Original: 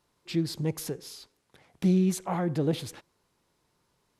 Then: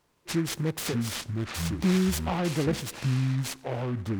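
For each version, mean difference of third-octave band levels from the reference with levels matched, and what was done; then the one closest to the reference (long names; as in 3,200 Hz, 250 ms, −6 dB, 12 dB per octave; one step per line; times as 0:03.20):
9.5 dB: dynamic equaliser 6,100 Hz, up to +6 dB, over −53 dBFS, Q 1.1
in parallel at 0 dB: downward compressor, threshold −31 dBFS, peak gain reduction 11.5 dB
on the sum: delay with pitch and tempo change per echo 445 ms, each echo −6 semitones, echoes 2
short delay modulated by noise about 1,400 Hz, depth 0.065 ms
level −3 dB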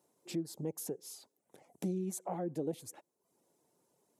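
5.0 dB: reverb reduction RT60 0.54 s
high-pass filter 240 Hz 12 dB per octave
flat-topped bell 2,300 Hz −12.5 dB 2.6 octaves
downward compressor 2 to 1, threshold −44 dBFS, peak gain reduction 11 dB
level +3 dB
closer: second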